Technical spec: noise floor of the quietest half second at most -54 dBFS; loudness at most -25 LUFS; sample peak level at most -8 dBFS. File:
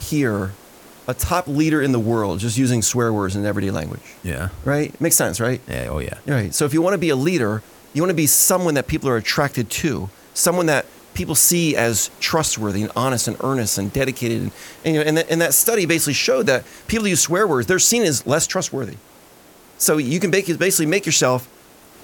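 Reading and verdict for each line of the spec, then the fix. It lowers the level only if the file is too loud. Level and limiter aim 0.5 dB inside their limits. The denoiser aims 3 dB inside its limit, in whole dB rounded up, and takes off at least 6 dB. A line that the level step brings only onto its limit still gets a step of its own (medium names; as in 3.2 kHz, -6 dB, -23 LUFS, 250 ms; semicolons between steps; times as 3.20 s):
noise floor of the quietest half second -47 dBFS: fail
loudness -18.5 LUFS: fail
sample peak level -2.5 dBFS: fail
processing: noise reduction 6 dB, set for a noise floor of -47 dBFS; trim -7 dB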